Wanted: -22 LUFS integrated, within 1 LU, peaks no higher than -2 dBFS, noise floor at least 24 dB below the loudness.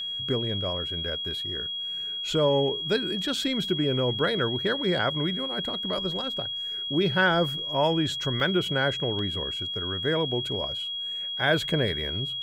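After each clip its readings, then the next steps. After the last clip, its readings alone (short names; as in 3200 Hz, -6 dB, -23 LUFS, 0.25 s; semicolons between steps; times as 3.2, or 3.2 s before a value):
dropouts 2; longest dropout 1.3 ms; steady tone 3300 Hz; tone level -30 dBFS; loudness -26.5 LUFS; peak -9.5 dBFS; loudness target -22.0 LUFS
-> interpolate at 8.4/9.19, 1.3 ms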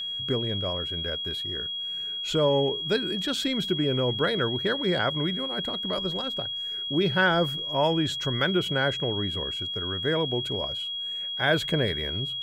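dropouts 0; steady tone 3300 Hz; tone level -30 dBFS
-> notch 3300 Hz, Q 30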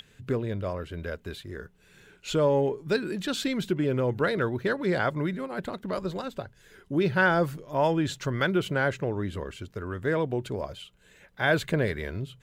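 steady tone none; loudness -28.5 LUFS; peak -10.0 dBFS; loudness target -22.0 LUFS
-> gain +6.5 dB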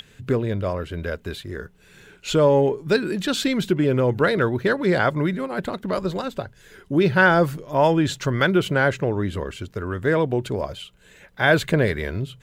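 loudness -22.0 LUFS; peak -3.5 dBFS; noise floor -53 dBFS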